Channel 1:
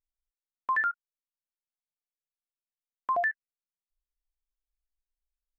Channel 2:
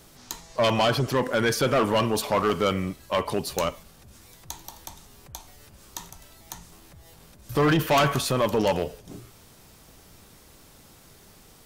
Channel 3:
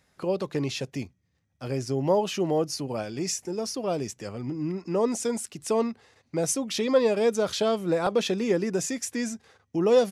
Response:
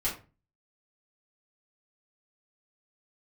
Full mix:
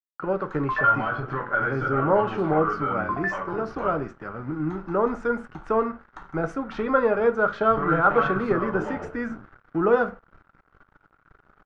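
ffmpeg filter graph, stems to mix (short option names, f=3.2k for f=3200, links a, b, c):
-filter_complex "[0:a]volume=-8.5dB,asplit=2[a][b];[b]volume=-6.5dB[c];[1:a]acompressor=threshold=-26dB:ratio=6,adelay=200,volume=-6.5dB,asplit=2[d][e];[e]volume=-3.5dB[f];[2:a]volume=-1dB,asplit=3[g][h][i];[h]volume=-12.5dB[j];[i]apad=whole_len=522739[k];[d][k]sidechaincompress=threshold=-40dB:ratio=8:attack=16:release=278[l];[3:a]atrim=start_sample=2205[m];[c][f][j]amix=inputs=3:normalize=0[n];[n][m]afir=irnorm=-1:irlink=0[o];[a][l][g][o]amix=inputs=4:normalize=0,bandreject=f=510:w=17,aeval=exprs='sgn(val(0))*max(abs(val(0))-0.00447,0)':c=same,lowpass=f=1.4k:t=q:w=6.6"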